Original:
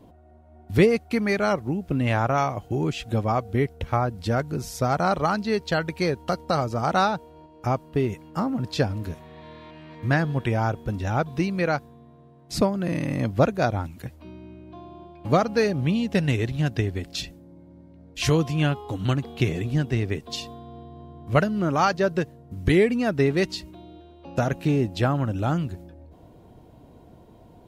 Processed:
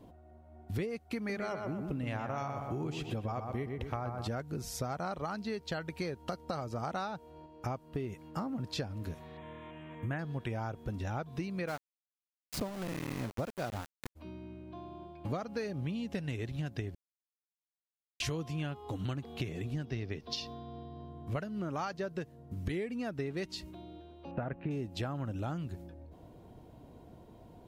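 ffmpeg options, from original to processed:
-filter_complex "[0:a]asettb=1/sr,asplit=3[s0][s1][s2];[s0]atrim=end=1.174[s3];[s1]atrim=start=1.17:end=4.28,asetpts=PTS-STARTPTS,afade=t=in:d=0.004:c=qsin,afade=t=out:st=3.106:d=0.004:c=qsin,asplit=2[s4][s5];[s5]adelay=122,lowpass=f=2600:p=1,volume=0.501,asplit=2[s6][s7];[s7]adelay=122,lowpass=f=2600:p=1,volume=0.46,asplit=2[s8][s9];[s9]adelay=122,lowpass=f=2600:p=1,volume=0.46,asplit=2[s10][s11];[s11]adelay=122,lowpass=f=2600:p=1,volume=0.46,asplit=2[s12][s13];[s13]adelay=122,lowpass=f=2600:p=1,volume=0.46,asplit=2[s14][s15];[s15]adelay=122,lowpass=f=2600:p=1,volume=0.46[s16];[s4][s6][s8][s10][s12][s14][s16]amix=inputs=7:normalize=0,atrim=end_sample=137151[s17];[s2]atrim=start=4.276[s18];[s3][s17]acrossfade=d=0.004:c1=hsin:c2=qsin[s19];[s19][s18]acrossfade=d=0.004:c1=qsin:c2=hsin,asettb=1/sr,asplit=3[s20][s21][s22];[s20]atrim=end=9.374[s23];[s21]atrim=start=9.37:end=10.19,asetpts=PTS-STARTPTS,afade=t=in:d=0.004:c=qsin,afade=t=out:st=0.816:d=0.004:c=qsin,asuperstop=centerf=4800:order=8:qfactor=1.5[s24];[s22]atrim=start=10.186[s25];[s23][s24]acrossfade=d=0.004:c1=hsin:c2=qsin[s26];[s26][s25]acrossfade=d=0.004:c1=qsin:c2=hsin,asplit=3[s27][s28][s29];[s27]afade=t=out:st=11.67:d=0.02[s30];[s28]aeval=exprs='val(0)*gte(abs(val(0)),0.0473)':c=same,afade=t=in:st=11.67:d=0.02,afade=t=out:st=14.15:d=0.02[s31];[s29]afade=t=in:st=14.15:d=0.02[s32];[s30][s31][s32]amix=inputs=3:normalize=0,asettb=1/sr,asplit=3[s33][s34][s35];[s33]atrim=end=19.854[s36];[s34]atrim=start=19.85:end=21.09,asetpts=PTS-STARTPTS,afade=t=in:d=0.004:c=qsin,afade=t=out:st=1.236:d=0.004:c=qsin,highshelf=f=6500:t=q:w=3:g=-7[s37];[s35]atrim=start=21.086[s38];[s36][s37]acrossfade=d=0.004:c1=hsin:c2=qsin[s39];[s39][s38]acrossfade=d=0.004:c1=qsin:c2=hsin,asettb=1/sr,asplit=3[s40][s41][s42];[s40]atrim=end=24.314[s43];[s41]atrim=start=24.31:end=24.71,asetpts=PTS-STARTPTS,afade=t=in:d=0.004:c=qsin,afade=t=out:st=0.396:d=0.004:c=qsin,lowpass=f=2300:w=0.5412,lowpass=f=2300:w=1.3066[s44];[s42]atrim=start=24.706[s45];[s43][s44]acrossfade=d=0.004:c1=hsin:c2=qsin[s46];[s46][s45]acrossfade=d=0.004:c1=qsin:c2=hsin,asplit=3[s47][s48][s49];[s47]atrim=end=16.95,asetpts=PTS-STARTPTS,afade=t=out:st=16.946:d=0.004:c=hsin[s50];[s48]atrim=start=16.95:end=18.2,asetpts=PTS-STARTPTS,volume=0[s51];[s49]atrim=start=18.2,asetpts=PTS-STARTPTS,afade=t=in:d=0.004:c=hsin[s52];[s50][s51][s52]concat=n=3:v=0:a=1,acompressor=threshold=0.0316:ratio=6,volume=0.631"

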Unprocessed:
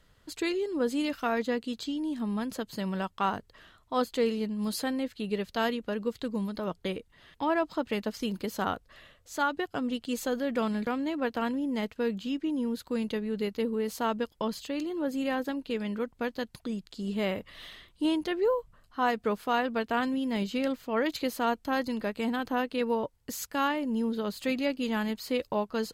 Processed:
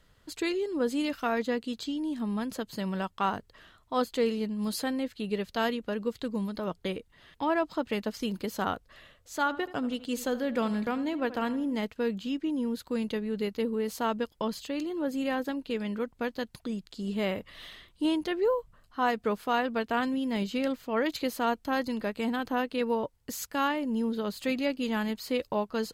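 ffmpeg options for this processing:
-filter_complex "[0:a]asettb=1/sr,asplit=3[s0][s1][s2];[s0]atrim=end=9.344[s3];[s1]atrim=start=9.34:end=11.77,asetpts=PTS-STARTPTS,afade=t=in:d=0.004:c=qsin,afade=t=out:st=2.426:d=0.004:c=qsin,asplit=2[s4][s5];[s5]adelay=80,lowpass=f=2800:p=1,volume=0.178,asplit=2[s6][s7];[s7]adelay=80,lowpass=f=2800:p=1,volume=0.39,asplit=2[s8][s9];[s9]adelay=80,lowpass=f=2800:p=1,volume=0.39,asplit=2[s10][s11];[s11]adelay=80,lowpass=f=2800:p=1,volume=0.39[s12];[s4][s6][s8][s10][s12]amix=inputs=5:normalize=0,atrim=end_sample=107163[s13];[s2]atrim=start=11.766[s14];[s3][s13]acrossfade=d=0.004:c1=hsin:c2=qsin[s15];[s15][s14]acrossfade=d=0.004:c1=qsin:c2=hsin"

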